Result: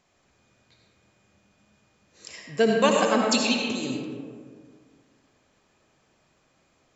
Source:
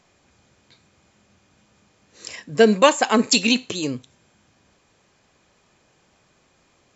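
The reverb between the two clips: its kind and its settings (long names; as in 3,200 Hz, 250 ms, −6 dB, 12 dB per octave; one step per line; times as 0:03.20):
comb and all-pass reverb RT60 1.9 s, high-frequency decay 0.4×, pre-delay 40 ms, DRR 0 dB
level −7.5 dB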